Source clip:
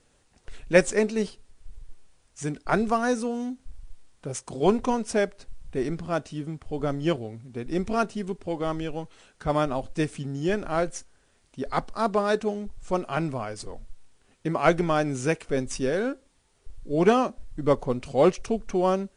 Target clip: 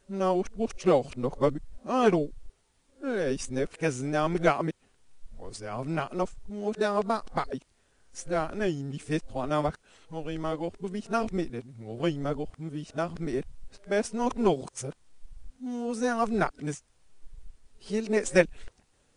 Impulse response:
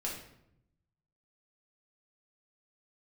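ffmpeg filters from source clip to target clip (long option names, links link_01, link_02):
-af "areverse,volume=-3dB"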